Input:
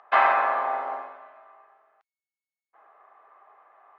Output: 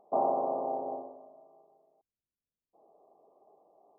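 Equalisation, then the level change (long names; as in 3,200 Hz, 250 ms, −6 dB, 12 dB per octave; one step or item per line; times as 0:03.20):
Gaussian smoothing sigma 17 samples
low-shelf EQ 200 Hz +6.5 dB
+8.5 dB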